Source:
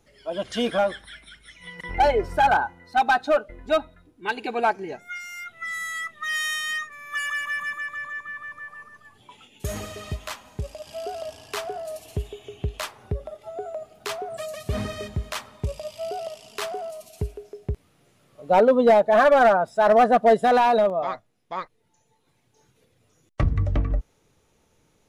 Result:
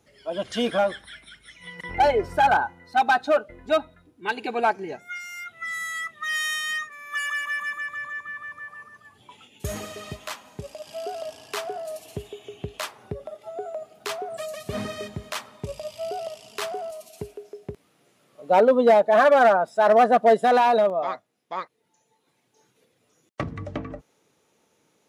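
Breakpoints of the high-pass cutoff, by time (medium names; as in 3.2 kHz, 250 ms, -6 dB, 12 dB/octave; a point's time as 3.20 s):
69 Hz
from 6.89 s 220 Hz
from 7.76 s 61 Hz
from 9.76 s 150 Hz
from 15.69 s 64 Hz
from 16.91 s 200 Hz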